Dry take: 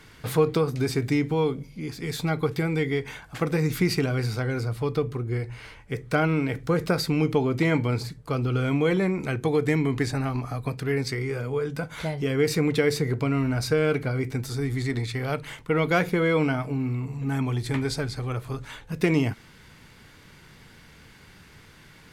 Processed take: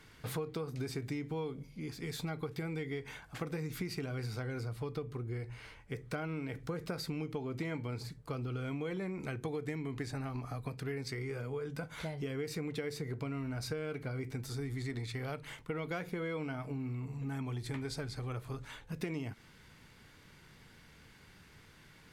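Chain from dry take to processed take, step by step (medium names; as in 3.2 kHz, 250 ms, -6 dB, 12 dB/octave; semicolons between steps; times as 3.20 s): compression, threshold -27 dBFS, peak gain reduction 11 dB; trim -8 dB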